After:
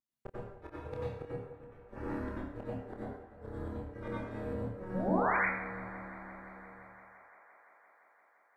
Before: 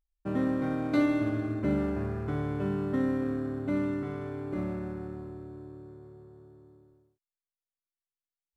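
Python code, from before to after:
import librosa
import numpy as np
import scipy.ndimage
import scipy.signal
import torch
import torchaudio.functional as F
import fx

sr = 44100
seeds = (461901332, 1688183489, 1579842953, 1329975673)

p1 = fx.dereverb_blind(x, sr, rt60_s=0.5)
p2 = scipy.signal.sosfilt(scipy.signal.butter(2, 140.0, 'highpass', fs=sr, output='sos'), p1)
p3 = fx.dereverb_blind(p2, sr, rt60_s=1.6)
p4 = fx.high_shelf(p3, sr, hz=3700.0, db=-2.0)
p5 = fx.rider(p4, sr, range_db=4, speed_s=2.0)
p6 = fx.gate_flip(p5, sr, shuts_db=-30.0, range_db=-39)
p7 = fx.spec_paint(p6, sr, seeds[0], shape='rise', start_s=4.94, length_s=0.43, low_hz=330.0, high_hz=2300.0, level_db=-35.0)
p8 = p7 * np.sin(2.0 * np.pi * 180.0 * np.arange(len(p7)) / sr)
p9 = fx.doubler(p8, sr, ms=27.0, db=-5.5)
p10 = p9 + fx.echo_wet_bandpass(p9, sr, ms=172, feedback_pct=84, hz=1100.0, wet_db=-15.5, dry=0)
y = fx.rev_plate(p10, sr, seeds[1], rt60_s=0.75, hf_ratio=0.85, predelay_ms=80, drr_db=-7.0)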